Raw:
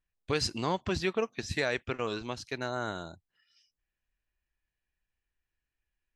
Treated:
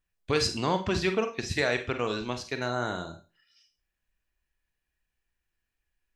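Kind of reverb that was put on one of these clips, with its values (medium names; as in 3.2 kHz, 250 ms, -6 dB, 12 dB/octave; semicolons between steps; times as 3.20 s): Schroeder reverb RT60 0.31 s, combs from 33 ms, DRR 7 dB; trim +3 dB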